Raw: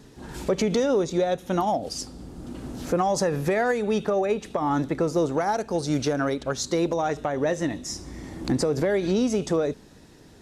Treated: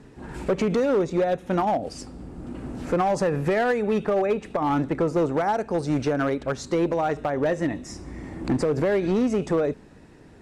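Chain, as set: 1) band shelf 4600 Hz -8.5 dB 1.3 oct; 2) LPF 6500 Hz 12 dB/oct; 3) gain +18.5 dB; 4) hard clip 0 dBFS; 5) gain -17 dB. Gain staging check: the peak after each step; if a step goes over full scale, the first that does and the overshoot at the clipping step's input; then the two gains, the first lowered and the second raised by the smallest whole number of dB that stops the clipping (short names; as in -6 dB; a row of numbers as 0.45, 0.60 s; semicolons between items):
-13.5, -13.5, +5.0, 0.0, -17.0 dBFS; step 3, 5.0 dB; step 3 +13.5 dB, step 5 -12 dB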